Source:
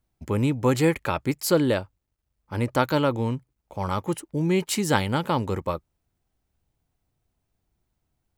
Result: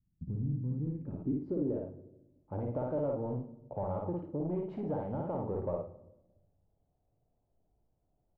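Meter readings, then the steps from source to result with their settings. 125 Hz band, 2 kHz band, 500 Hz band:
-9.5 dB, under -30 dB, -10.0 dB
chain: low-pass 4.5 kHz; compression, threshold -28 dBFS, peak gain reduction 12.5 dB; multi-tap echo 56/107 ms -3/-13.5 dB; saturation -28 dBFS, distortion -13 dB; low-pass sweep 180 Hz -> 640 Hz, 0.59–2.36 s; simulated room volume 350 m³, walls mixed, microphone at 0.32 m; trim -4.5 dB

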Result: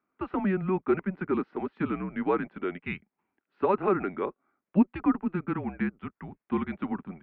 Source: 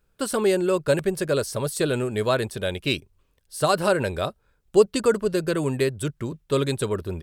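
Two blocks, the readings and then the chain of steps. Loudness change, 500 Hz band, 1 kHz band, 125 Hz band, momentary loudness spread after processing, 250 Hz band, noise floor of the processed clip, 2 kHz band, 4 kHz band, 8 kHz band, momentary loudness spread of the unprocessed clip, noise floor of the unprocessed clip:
-6.0 dB, -9.5 dB, -3.0 dB, -8.0 dB, 9 LU, 0.0 dB, under -85 dBFS, -8.0 dB, under -20 dB, under -40 dB, 8 LU, -68 dBFS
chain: mistuned SSB -190 Hz 400–2400 Hz; trim -3 dB

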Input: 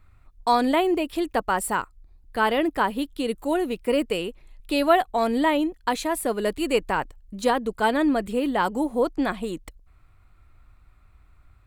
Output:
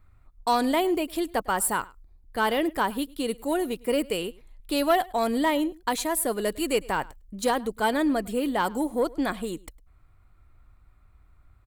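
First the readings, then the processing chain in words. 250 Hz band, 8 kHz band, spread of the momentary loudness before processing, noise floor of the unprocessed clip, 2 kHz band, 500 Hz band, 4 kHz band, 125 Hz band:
-2.5 dB, +4.5 dB, 8 LU, -56 dBFS, -2.5 dB, -2.5 dB, -1.0 dB, -2.0 dB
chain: treble shelf 6.5 kHz +10.5 dB; band-stop 2.6 kHz, Q 22; saturation -10.5 dBFS, distortion -23 dB; on a send: delay 105 ms -23 dB; on the sum: tape noise reduction on one side only decoder only; trim -2 dB

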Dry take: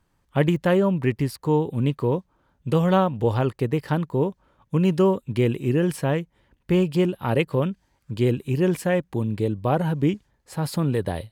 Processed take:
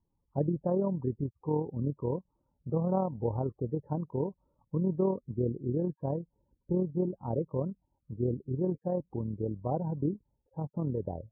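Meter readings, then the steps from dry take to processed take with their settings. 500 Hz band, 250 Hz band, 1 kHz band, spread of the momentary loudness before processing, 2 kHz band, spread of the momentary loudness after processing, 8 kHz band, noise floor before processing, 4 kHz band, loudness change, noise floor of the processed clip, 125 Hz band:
-9.5 dB, -9.5 dB, -11.5 dB, 8 LU, under -35 dB, 8 LU, under -35 dB, -69 dBFS, under -40 dB, -10.0 dB, -80 dBFS, -9.5 dB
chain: loudest bins only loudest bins 32; AM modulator 39 Hz, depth 30%; steep low-pass 980 Hz 36 dB/octave; trim -7.5 dB

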